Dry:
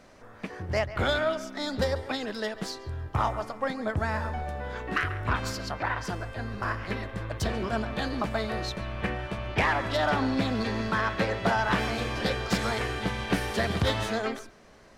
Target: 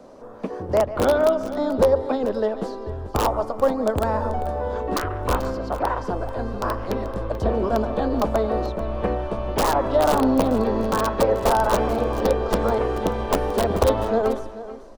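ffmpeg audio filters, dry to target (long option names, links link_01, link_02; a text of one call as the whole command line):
ffmpeg -i in.wav -filter_complex "[0:a]acrossover=split=300|770|3000[link_01][link_02][link_03][link_04];[link_04]acompressor=threshold=-50dB:ratio=16[link_05];[link_01][link_02][link_03][link_05]amix=inputs=4:normalize=0,aeval=exprs='(mod(7.5*val(0)+1,2)-1)/7.5':channel_layout=same,equalizer=frequency=250:width_type=o:width=1:gain=8,equalizer=frequency=500:width_type=o:width=1:gain=11,equalizer=frequency=1000:width_type=o:width=1:gain=7,equalizer=frequency=2000:width_type=o:width=1:gain=-9,aecho=1:1:436:0.188,asubboost=boost=5.5:cutoff=56" out.wav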